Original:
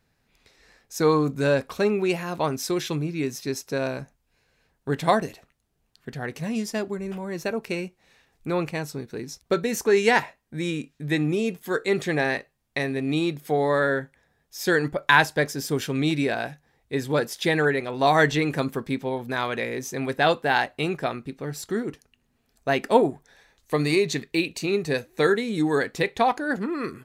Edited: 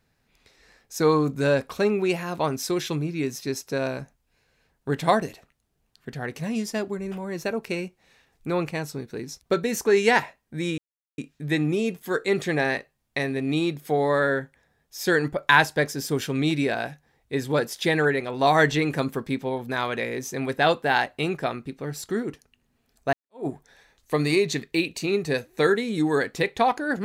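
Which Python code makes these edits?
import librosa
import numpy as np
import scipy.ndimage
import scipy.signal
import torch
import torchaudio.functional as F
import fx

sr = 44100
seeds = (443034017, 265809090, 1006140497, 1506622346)

y = fx.edit(x, sr, fx.insert_silence(at_s=10.78, length_s=0.4),
    fx.fade_in_span(start_s=22.73, length_s=0.34, curve='exp'), tone=tone)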